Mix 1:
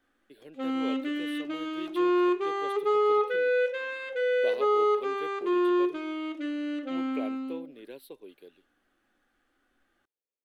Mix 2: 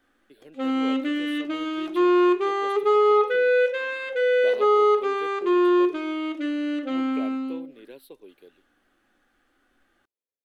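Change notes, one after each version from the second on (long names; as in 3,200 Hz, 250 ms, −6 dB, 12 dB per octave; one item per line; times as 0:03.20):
background +5.5 dB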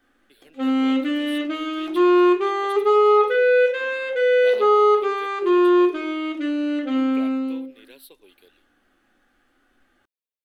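speech: add tilt shelving filter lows −8 dB, about 1,200 Hz
background: send +6.0 dB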